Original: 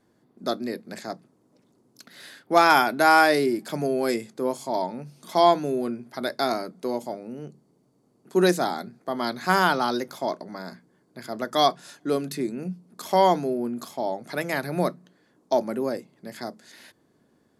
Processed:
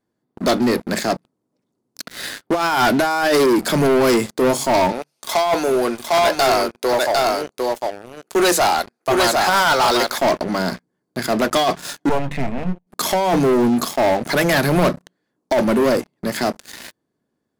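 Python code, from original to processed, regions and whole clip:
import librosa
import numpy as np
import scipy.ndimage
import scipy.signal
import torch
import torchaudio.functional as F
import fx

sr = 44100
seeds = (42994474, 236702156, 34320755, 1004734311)

y = fx.chain(x, sr, fx.highpass(hz=520.0, slope=12),
    fx.echo_single(ms=753, db=-5.0), at=(4.92, 10.18))
y = fx.chain(y, sr, fx.halfwave_gain(db=-12.0),
    fx.lowpass(hz=2700.0, slope=12),
    fx.fixed_phaser(hz=1300.0, stages=6), at=(12.09, 12.87))
y = fx.over_compress(y, sr, threshold_db=-22.0, ratio=-0.5)
y = fx.leveller(y, sr, passes=5)
y = y * librosa.db_to_amplitude(-3.0)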